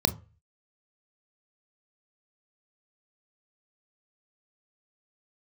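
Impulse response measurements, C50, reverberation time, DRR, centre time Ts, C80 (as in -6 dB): 18.5 dB, 0.35 s, 10.0 dB, 6 ms, 24.0 dB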